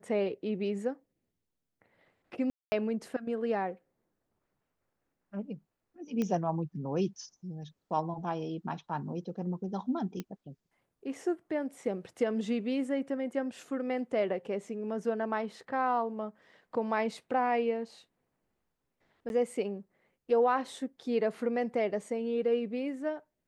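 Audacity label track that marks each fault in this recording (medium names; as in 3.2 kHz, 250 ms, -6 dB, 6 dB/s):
2.500000	2.720000	dropout 220 ms
6.220000	6.220000	pop -20 dBFS
10.200000	10.200000	pop -23 dBFS
19.290000	19.300000	dropout 11 ms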